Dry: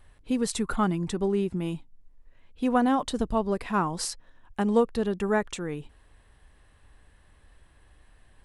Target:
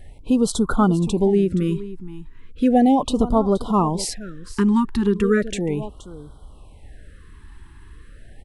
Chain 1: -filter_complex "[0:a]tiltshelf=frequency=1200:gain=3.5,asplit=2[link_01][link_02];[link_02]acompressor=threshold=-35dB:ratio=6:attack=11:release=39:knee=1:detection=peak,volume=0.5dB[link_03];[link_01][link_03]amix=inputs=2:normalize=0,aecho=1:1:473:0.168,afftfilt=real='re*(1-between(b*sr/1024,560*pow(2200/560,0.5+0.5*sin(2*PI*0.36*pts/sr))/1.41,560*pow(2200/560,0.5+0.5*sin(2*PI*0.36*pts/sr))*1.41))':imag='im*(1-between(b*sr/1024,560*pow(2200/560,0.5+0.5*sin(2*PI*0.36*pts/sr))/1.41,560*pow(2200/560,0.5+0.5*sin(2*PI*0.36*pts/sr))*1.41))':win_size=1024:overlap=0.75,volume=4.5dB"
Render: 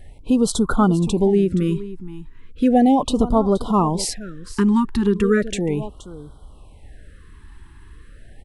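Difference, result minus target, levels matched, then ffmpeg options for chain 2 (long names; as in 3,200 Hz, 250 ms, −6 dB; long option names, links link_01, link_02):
downward compressor: peak gain reduction −5.5 dB
-filter_complex "[0:a]tiltshelf=frequency=1200:gain=3.5,asplit=2[link_01][link_02];[link_02]acompressor=threshold=-41.5dB:ratio=6:attack=11:release=39:knee=1:detection=peak,volume=0.5dB[link_03];[link_01][link_03]amix=inputs=2:normalize=0,aecho=1:1:473:0.168,afftfilt=real='re*(1-between(b*sr/1024,560*pow(2200/560,0.5+0.5*sin(2*PI*0.36*pts/sr))/1.41,560*pow(2200/560,0.5+0.5*sin(2*PI*0.36*pts/sr))*1.41))':imag='im*(1-between(b*sr/1024,560*pow(2200/560,0.5+0.5*sin(2*PI*0.36*pts/sr))/1.41,560*pow(2200/560,0.5+0.5*sin(2*PI*0.36*pts/sr))*1.41))':win_size=1024:overlap=0.75,volume=4.5dB"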